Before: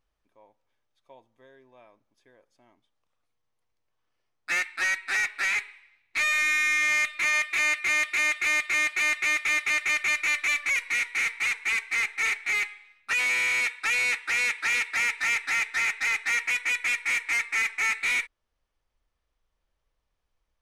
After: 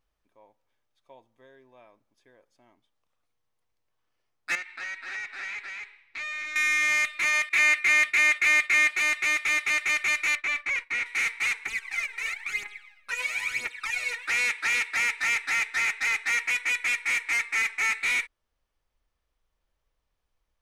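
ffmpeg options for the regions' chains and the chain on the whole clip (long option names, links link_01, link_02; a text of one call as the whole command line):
ffmpeg -i in.wav -filter_complex "[0:a]asettb=1/sr,asplit=3[link_01][link_02][link_03];[link_01]atrim=end=4.554[link_04];[link_02]atrim=start=4.55:end=6.56,asetpts=PTS-STARTPTS,afade=type=in:duration=0.004:curve=qsin,afade=type=out:start_time=2.006:duration=0.004:curve=qsin,lowpass=5300,aecho=1:1:248:0.447,atrim=end_sample=88641,acompressor=threshold=-38dB:ratio=2.5:attack=3.2:release=140:knee=1:detection=peak[link_05];[link_03]atrim=start=6.556[link_06];[link_04][link_05]acrossfade=duration=0.004:curve1=hsin:curve2=qsin[link_07];[link_07][link_06]acrossfade=duration=0.004:curve1=qsin:curve2=hsin,asettb=1/sr,asplit=3[link_08][link_09][link_10];[link_08]atrim=end=7.494[link_11];[link_09]atrim=start=7.49:end=8.91,asetpts=PTS-STARTPTS,afade=type=in:duration=0.004:curve=qsin,afade=type=out:start_time=1.416:duration=0.004:curve=qsin,agate=range=-33dB:threshold=-36dB:ratio=3:release=100:detection=peak,equalizer=frequency=2000:width_type=o:width=0.86:gain=4.5,bandreject=frequency=96.09:width_type=h:width=4,bandreject=frequency=192.18:width_type=h:width=4,bandreject=frequency=288.27:width_type=h:width=4,bandreject=frequency=384.36:width_type=h:width=4,bandreject=frequency=480.45:width_type=h:width=4,bandreject=frequency=576.54:width_type=h:width=4,bandreject=frequency=672.63:width_type=h:width=4,bandreject=frequency=768.72:width_type=h:width=4,bandreject=frequency=864.81:width_type=h:width=4,bandreject=frequency=960.9:width_type=h:width=4,bandreject=frequency=1056.99:width_type=h:width=4,bandreject=frequency=1153.08:width_type=h:width=4,bandreject=frequency=1249.17:width_type=h:width=4,bandreject=frequency=1345.26:width_type=h:width=4,bandreject=frequency=1441.35:width_type=h:width=4,bandreject=frequency=1537.44:width_type=h:width=4[link_12];[link_10]atrim=start=8.906[link_13];[link_11][link_12]acrossfade=duration=0.004:curve1=hsin:curve2=qsin[link_14];[link_14][link_13]acrossfade=duration=0.004:curve1=qsin:curve2=hsin,asettb=1/sr,asplit=3[link_15][link_16][link_17];[link_15]atrim=end=10.354[link_18];[link_16]atrim=start=10.35:end=11.06,asetpts=PTS-STARTPTS,afade=type=in:duration=0.004:curve=qsin,afade=type=out:start_time=0.706:duration=0.004:curve=qsin,agate=range=-33dB:threshold=-33dB:ratio=3:release=100:detection=peak,aemphasis=mode=reproduction:type=75fm[link_19];[link_17]atrim=start=11.056[link_20];[link_18][link_19]acrossfade=duration=0.004:curve1=hsin:curve2=qsin[link_21];[link_21][link_20]acrossfade=duration=0.004:curve1=qsin:curve2=hsin,asettb=1/sr,asplit=3[link_22][link_23][link_24];[link_22]atrim=end=11.664[link_25];[link_23]atrim=start=11.66:end=14.28,asetpts=PTS-STARTPTS,afade=type=in:duration=0.004:curve=qsin,afade=type=out:start_time=2.616:duration=0.004:curve=qsin,acompressor=threshold=-37dB:ratio=2.5:attack=3.2:release=140:knee=1:detection=peak,aphaser=in_gain=1:out_gain=1:delay=2.2:decay=0.75:speed=1:type=triangular[link_26];[link_24]atrim=start=14.276[link_27];[link_25][link_26]acrossfade=duration=0.004:curve1=hsin:curve2=qsin[link_28];[link_28][link_27]acrossfade=duration=0.004:curve1=qsin:curve2=hsin" out.wav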